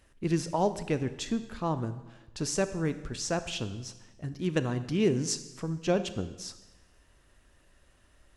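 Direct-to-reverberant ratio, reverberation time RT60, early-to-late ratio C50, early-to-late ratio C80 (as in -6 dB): 11.5 dB, 1.1 s, 13.0 dB, 14.5 dB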